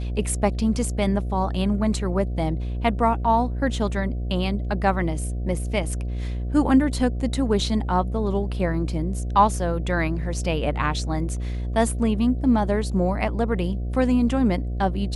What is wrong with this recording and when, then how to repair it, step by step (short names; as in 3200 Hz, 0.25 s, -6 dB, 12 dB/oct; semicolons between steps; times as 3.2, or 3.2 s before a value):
buzz 60 Hz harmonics 12 -27 dBFS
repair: de-hum 60 Hz, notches 12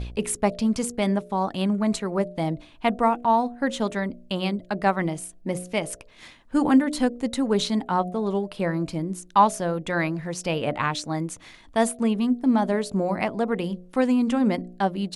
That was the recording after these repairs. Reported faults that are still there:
none